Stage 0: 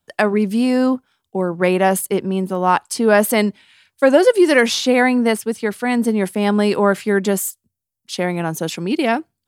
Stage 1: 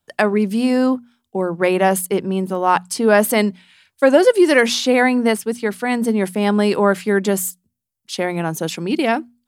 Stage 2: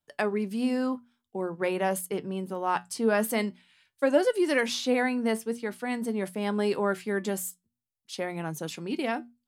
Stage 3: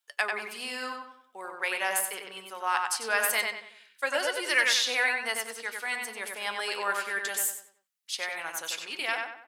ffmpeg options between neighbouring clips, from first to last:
ffmpeg -i in.wav -af "bandreject=frequency=60:width_type=h:width=6,bandreject=frequency=120:width_type=h:width=6,bandreject=frequency=180:width_type=h:width=6,bandreject=frequency=240:width_type=h:width=6" out.wav
ffmpeg -i in.wav -af "flanger=delay=6.6:depth=2.5:regen=72:speed=0.47:shape=triangular,volume=-7dB" out.wav
ffmpeg -i in.wav -filter_complex "[0:a]highpass=1400,asplit=2[link_01][link_02];[link_02]adelay=94,lowpass=frequency=3300:poles=1,volume=-3dB,asplit=2[link_03][link_04];[link_04]adelay=94,lowpass=frequency=3300:poles=1,volume=0.4,asplit=2[link_05][link_06];[link_06]adelay=94,lowpass=frequency=3300:poles=1,volume=0.4,asplit=2[link_07][link_08];[link_08]adelay=94,lowpass=frequency=3300:poles=1,volume=0.4,asplit=2[link_09][link_10];[link_10]adelay=94,lowpass=frequency=3300:poles=1,volume=0.4[link_11];[link_03][link_05][link_07][link_09][link_11]amix=inputs=5:normalize=0[link_12];[link_01][link_12]amix=inputs=2:normalize=0,volume=6.5dB" out.wav

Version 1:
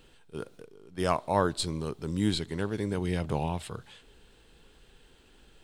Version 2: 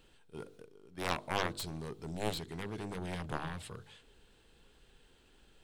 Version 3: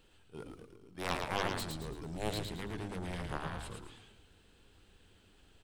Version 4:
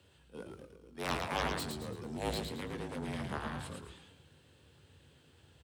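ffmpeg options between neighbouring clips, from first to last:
ffmpeg -i in.wav -af "aeval=exprs='0.316*(cos(1*acos(clip(val(0)/0.316,-1,1)))-cos(1*PI/2))+0.1*(cos(7*acos(clip(val(0)/0.316,-1,1)))-cos(7*PI/2))':channel_layout=same,bandreject=frequency=49:width_type=h:width=4,bandreject=frequency=98:width_type=h:width=4,bandreject=frequency=147:width_type=h:width=4,bandreject=frequency=196:width_type=h:width=4,bandreject=frequency=245:width_type=h:width=4,bandreject=frequency=294:width_type=h:width=4,bandreject=frequency=343:width_type=h:width=4,bandreject=frequency=392:width_type=h:width=4,bandreject=frequency=441:width_type=h:width=4,bandreject=frequency=490:width_type=h:width=4,volume=-7dB" out.wav
ffmpeg -i in.wav -filter_complex "[0:a]asplit=6[link_01][link_02][link_03][link_04][link_05][link_06];[link_02]adelay=111,afreqshift=-110,volume=-4dB[link_07];[link_03]adelay=222,afreqshift=-220,volume=-12.6dB[link_08];[link_04]adelay=333,afreqshift=-330,volume=-21.3dB[link_09];[link_05]adelay=444,afreqshift=-440,volume=-29.9dB[link_10];[link_06]adelay=555,afreqshift=-550,volume=-38.5dB[link_11];[link_01][link_07][link_08][link_09][link_10][link_11]amix=inputs=6:normalize=0,volume=-1.5dB" out.wav
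ffmpeg -i in.wav -filter_complex "[0:a]afreqshift=61,asplit=2[link_01][link_02];[link_02]adelay=21,volume=-11dB[link_03];[link_01][link_03]amix=inputs=2:normalize=0" out.wav

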